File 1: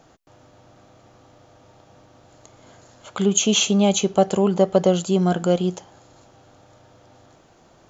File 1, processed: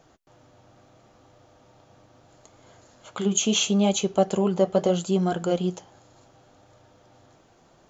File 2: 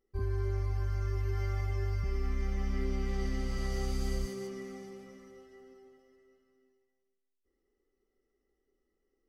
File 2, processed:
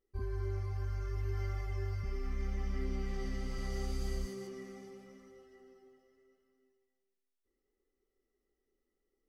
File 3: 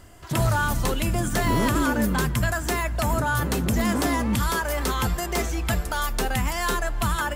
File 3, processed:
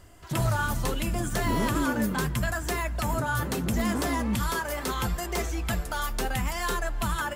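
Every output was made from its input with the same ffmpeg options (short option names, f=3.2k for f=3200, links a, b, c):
-af "flanger=delay=1.6:depth=8.2:regen=-58:speed=0.74:shape=triangular"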